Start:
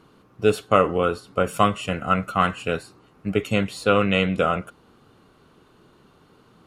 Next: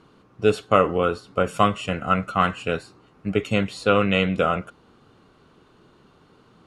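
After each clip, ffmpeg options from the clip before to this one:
-af "lowpass=8.1k"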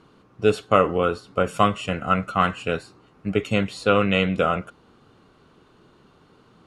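-af anull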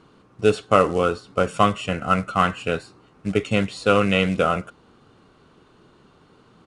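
-af "acrusher=bits=6:mode=log:mix=0:aa=0.000001,aresample=22050,aresample=44100,volume=1dB"

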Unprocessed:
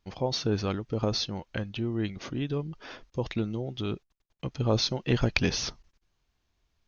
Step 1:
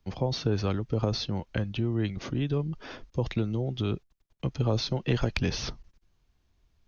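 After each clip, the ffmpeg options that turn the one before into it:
-filter_complex "[0:a]acrossover=split=180|370|4900[a][b][c][d];[a]acompressor=threshold=-34dB:ratio=4[e];[b]acompressor=threshold=-42dB:ratio=4[f];[c]acompressor=threshold=-30dB:ratio=4[g];[d]acompressor=threshold=-46dB:ratio=4[h];[e][f][g][h]amix=inputs=4:normalize=0,lowshelf=f=380:g=7.5"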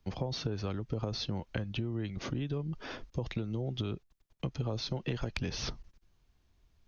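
-af "acompressor=threshold=-31dB:ratio=6"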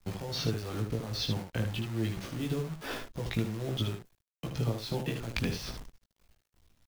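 -af "tremolo=f=2.4:d=0.71,acrusher=bits=9:dc=4:mix=0:aa=0.000001,aecho=1:1:18|76:0.708|0.531,volume=3dB"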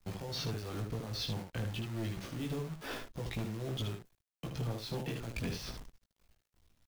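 -af "volume=28.5dB,asoftclip=hard,volume=-28.5dB,volume=-3.5dB"

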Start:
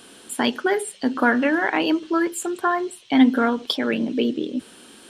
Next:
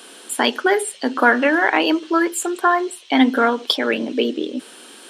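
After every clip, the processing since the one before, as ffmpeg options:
-af "highpass=340,volume=5.5dB"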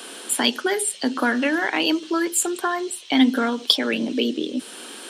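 -filter_complex "[0:a]acrossover=split=230|3000[a][b][c];[b]acompressor=threshold=-37dB:ratio=2[d];[a][d][c]amix=inputs=3:normalize=0,volume=4dB"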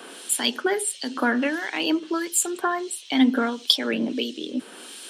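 -filter_complex "[0:a]acrossover=split=2300[a][b];[a]aeval=exprs='val(0)*(1-0.7/2+0.7/2*cos(2*PI*1.5*n/s))':c=same[c];[b]aeval=exprs='val(0)*(1-0.7/2-0.7/2*cos(2*PI*1.5*n/s))':c=same[d];[c][d]amix=inputs=2:normalize=0"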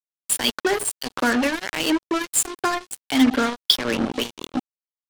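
-af "acrusher=bits=3:mix=0:aa=0.5,volume=1.5dB"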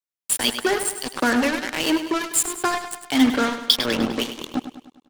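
-af "aecho=1:1:101|202|303|404|505|606:0.299|0.155|0.0807|0.042|0.0218|0.0114"

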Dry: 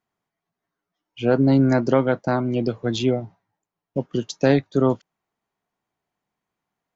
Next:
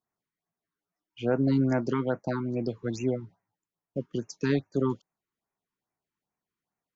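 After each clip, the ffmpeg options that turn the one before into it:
-af "afftfilt=real='re*(1-between(b*sr/1024,580*pow(4000/580,0.5+0.5*sin(2*PI*2.4*pts/sr))/1.41,580*pow(4000/580,0.5+0.5*sin(2*PI*2.4*pts/sr))*1.41))':imag='im*(1-between(b*sr/1024,580*pow(4000/580,0.5+0.5*sin(2*PI*2.4*pts/sr))/1.41,580*pow(4000/580,0.5+0.5*sin(2*PI*2.4*pts/sr))*1.41))':win_size=1024:overlap=0.75,volume=-7.5dB"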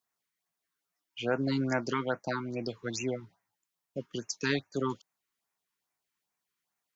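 -af "tiltshelf=f=880:g=-7.5"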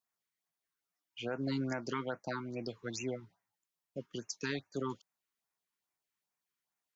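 -af "alimiter=limit=-20.5dB:level=0:latency=1:release=102,volume=-5dB"

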